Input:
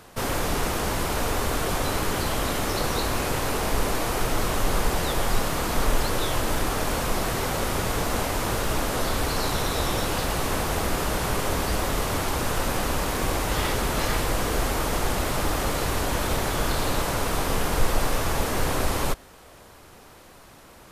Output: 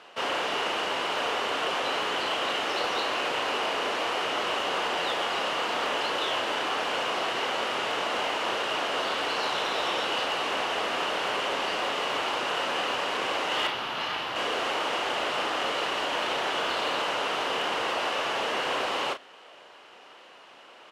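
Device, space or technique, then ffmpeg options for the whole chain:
megaphone: -filter_complex "[0:a]asettb=1/sr,asplit=3[s0][s1][s2];[s0]atrim=end=13.674[s3];[s1]atrim=start=13.67:end=14.36,asetpts=PTS-STARTPTS,afade=t=in:d=0.004:c=qsin,afade=t=out:st=0.686:d=0.004:c=qsin,equalizer=f=125:t=o:w=1:g=5,equalizer=f=250:t=o:w=1:g=-3,equalizer=f=500:t=o:w=1:g=-8,equalizer=f=2000:t=o:w=1:g=-4,equalizer=f=8000:t=o:w=1:g=-10[s4];[s2]atrim=start=14.356[s5];[s3][s4]acrossfade=d=0.004:c1=hsin:c2=qsin[s6];[s6][s5]acrossfade=d=0.004:c1=qsin:c2=hsin,highpass=480,lowpass=3900,equalizer=f=2900:t=o:w=0.25:g=10.5,asoftclip=type=hard:threshold=0.0891,asplit=2[s7][s8];[s8]adelay=35,volume=0.376[s9];[s7][s9]amix=inputs=2:normalize=0"

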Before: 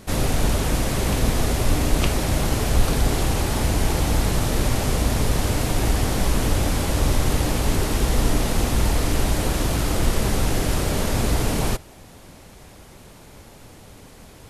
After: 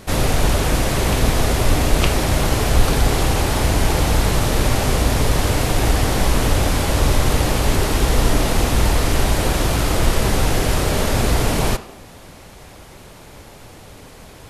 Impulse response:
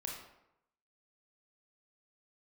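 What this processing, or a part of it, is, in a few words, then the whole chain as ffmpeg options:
filtered reverb send: -filter_complex "[0:a]asplit=2[s0][s1];[s1]highpass=f=210:w=0.5412,highpass=f=210:w=1.3066,lowpass=5900[s2];[1:a]atrim=start_sample=2205[s3];[s2][s3]afir=irnorm=-1:irlink=0,volume=0.422[s4];[s0][s4]amix=inputs=2:normalize=0,volume=1.5"

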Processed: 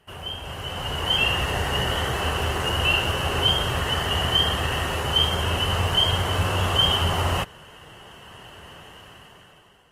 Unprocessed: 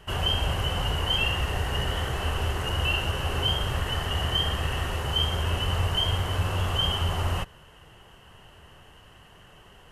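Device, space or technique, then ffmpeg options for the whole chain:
video call: -af "highpass=f=130:p=1,dynaudnorm=f=210:g=9:m=6.31,volume=0.473" -ar 48000 -c:a libopus -b:a 32k

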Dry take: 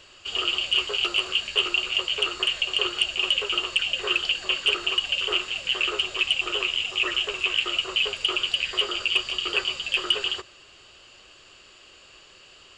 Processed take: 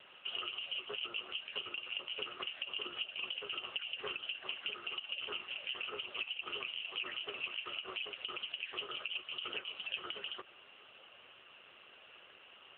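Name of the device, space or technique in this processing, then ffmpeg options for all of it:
voicemail: -af "highpass=380,lowpass=2900,acompressor=threshold=0.02:ratio=8,volume=0.841" -ar 8000 -c:a libopencore_amrnb -b:a 7950

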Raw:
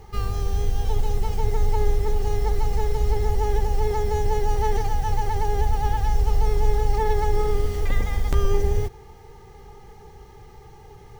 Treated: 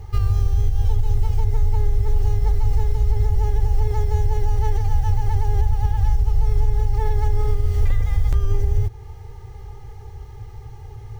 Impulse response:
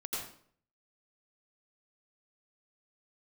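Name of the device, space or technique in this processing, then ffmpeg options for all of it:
car stereo with a boomy subwoofer: -af "lowshelf=f=140:t=q:w=3:g=8.5,alimiter=limit=0.335:level=0:latency=1:release=281"

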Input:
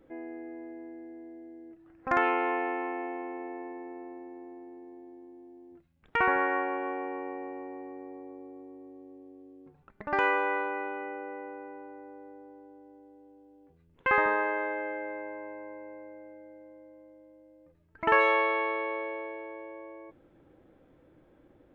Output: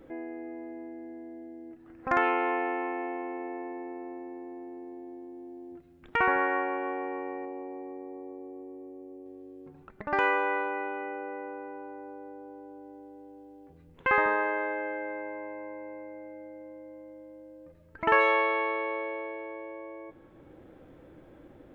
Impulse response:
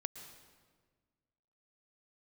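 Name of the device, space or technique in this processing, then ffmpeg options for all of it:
ducked reverb: -filter_complex "[0:a]asplit=3[s0][s1][s2];[1:a]atrim=start_sample=2205[s3];[s1][s3]afir=irnorm=-1:irlink=0[s4];[s2]apad=whole_len=958886[s5];[s4][s5]sidechaincompress=threshold=0.00316:ratio=8:attack=8:release=904,volume=1.88[s6];[s0][s6]amix=inputs=2:normalize=0,asettb=1/sr,asplit=3[s7][s8][s9];[s7]atrim=end=7.454[s10];[s8]atrim=start=7.45:end=9.26,asetpts=PTS-STARTPTS,afade=t=in:d=0.004:c=qsin,afade=t=out:st=1.806:d=0.004:c=qsin,equalizer=f=100:t=o:w=0.67:g=-7,equalizer=f=1600:t=o:w=0.67:g=-11,equalizer=f=4000:t=o:w=0.67:g=-9[s11];[s9]atrim=start=9.256[s12];[s10][s11]acrossfade=d=0.004:c1=hsin:c2=qsin[s13];[s13][s12]acrossfade=d=0.004:c1=qsin:c2=hsin"

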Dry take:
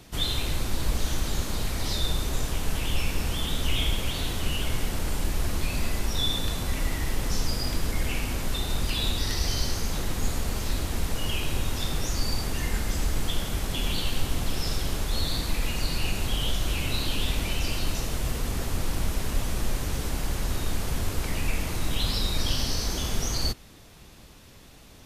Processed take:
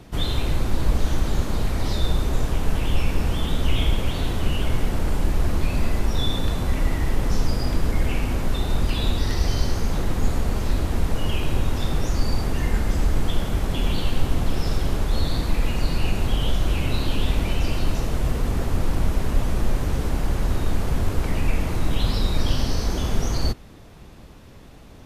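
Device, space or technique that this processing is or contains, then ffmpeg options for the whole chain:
through cloth: -af "highshelf=f=2200:g=-12,volume=2.11"

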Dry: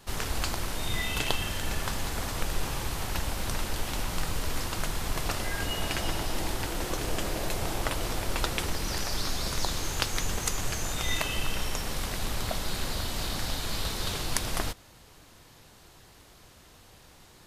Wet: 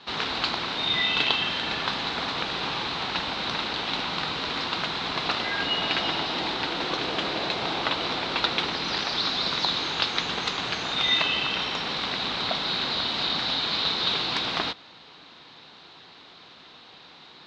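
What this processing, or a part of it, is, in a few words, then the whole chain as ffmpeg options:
overdrive pedal into a guitar cabinet: -filter_complex "[0:a]asplit=2[s0][s1];[s1]highpass=f=720:p=1,volume=6.31,asoftclip=type=tanh:threshold=0.531[s2];[s0][s2]amix=inputs=2:normalize=0,lowpass=f=4900:p=1,volume=0.501,highpass=90,equalizer=f=91:t=q:w=4:g=-7,equalizer=f=170:t=q:w=4:g=4,equalizer=f=260:t=q:w=4:g=4,equalizer=f=580:t=q:w=4:g=-4,equalizer=f=1800:t=q:w=4:g=-3,equalizer=f=3900:t=q:w=4:g=9,lowpass=f=4300:w=0.5412,lowpass=f=4300:w=1.3066,volume=0.841"

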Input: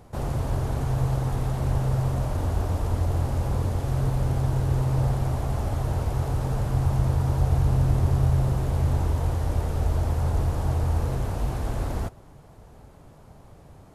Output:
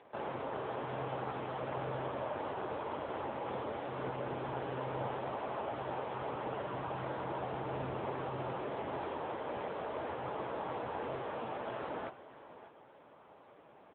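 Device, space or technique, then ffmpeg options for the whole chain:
satellite phone: -af "highpass=400,lowpass=3200,highshelf=f=2000:g=3.5,bandreject=f=720:w=15,aecho=1:1:592:0.178" -ar 8000 -c:a libopencore_amrnb -b:a 6700

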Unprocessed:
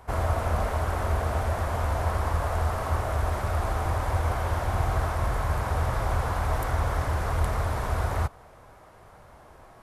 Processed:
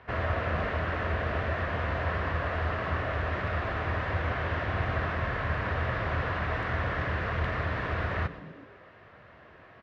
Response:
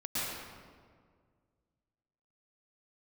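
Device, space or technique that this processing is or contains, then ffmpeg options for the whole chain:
frequency-shifting delay pedal into a guitar cabinet: -filter_complex "[0:a]asplit=6[s0][s1][s2][s3][s4][s5];[s1]adelay=124,afreqshift=-120,volume=0.2[s6];[s2]adelay=248,afreqshift=-240,volume=0.107[s7];[s3]adelay=372,afreqshift=-360,volume=0.0582[s8];[s4]adelay=496,afreqshift=-480,volume=0.0313[s9];[s5]adelay=620,afreqshift=-600,volume=0.017[s10];[s0][s6][s7][s8][s9][s10]amix=inputs=6:normalize=0,highpass=90,equalizer=f=840:t=q:w=4:g=-9,equalizer=f=1800:t=q:w=4:g=9,equalizer=f=2700:t=q:w=4:g=6,lowpass=f=4000:w=0.5412,lowpass=f=4000:w=1.3066,volume=0.891"

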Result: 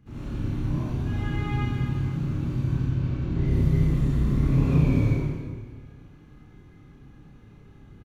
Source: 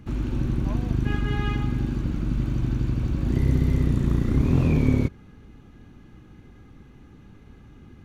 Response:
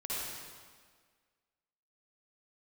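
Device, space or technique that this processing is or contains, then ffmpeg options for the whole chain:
stairwell: -filter_complex "[0:a]asettb=1/sr,asplit=3[s0][s1][s2];[s0]atrim=end=2.734[s3];[s1]atrim=start=2.73:end=3.46,asetpts=PTS-STARTPTS,afade=t=in:d=0.004:c=qsin,afade=t=out:st=0.726:d=0.004:c=qsin,lowpass=5200[s4];[s2]atrim=start=3.456[s5];[s3][s4]acrossfade=d=0.004:c1=hsin:c2=qsin[s6];[s6][s5]acrossfade=d=0.004:c1=qsin:c2=hsin,equalizer=f=120:t=o:w=0.35:g=5.5[s7];[1:a]atrim=start_sample=2205[s8];[s7][s8]afir=irnorm=-1:irlink=0,asplit=2[s9][s10];[s10]adelay=30,volume=0.708[s11];[s9][s11]amix=inputs=2:normalize=0,volume=0.422"

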